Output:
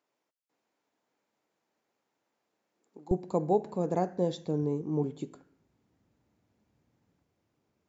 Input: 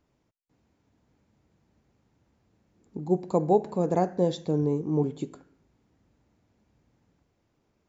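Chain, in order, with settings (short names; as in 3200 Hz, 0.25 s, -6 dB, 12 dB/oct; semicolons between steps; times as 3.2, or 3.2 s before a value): HPF 490 Hz 12 dB/oct, from 3.11 s 74 Hz; gain -4.5 dB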